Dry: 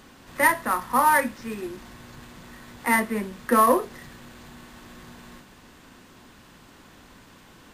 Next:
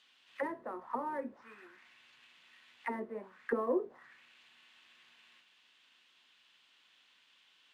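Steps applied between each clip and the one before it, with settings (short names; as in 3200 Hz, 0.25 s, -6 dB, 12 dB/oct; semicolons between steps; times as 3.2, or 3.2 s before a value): auto-wah 380–3400 Hz, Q 2.7, down, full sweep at -20 dBFS; gain -5.5 dB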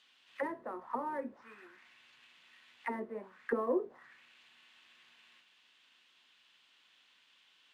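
nothing audible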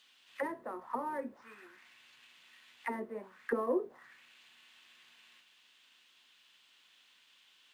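high shelf 6800 Hz +11 dB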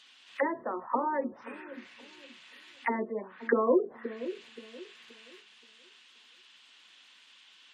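spectral gate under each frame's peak -25 dB strong; dark delay 0.526 s, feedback 31%, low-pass 420 Hz, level -9.5 dB; gain +7.5 dB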